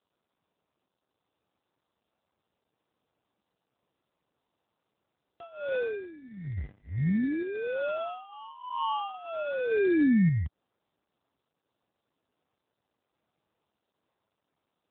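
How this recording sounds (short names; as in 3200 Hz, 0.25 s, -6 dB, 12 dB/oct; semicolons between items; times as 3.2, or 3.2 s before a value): phasing stages 8, 0.44 Hz, lowest notch 310–1100 Hz; aliases and images of a low sample rate 2000 Hz, jitter 0%; random-step tremolo; AMR-NB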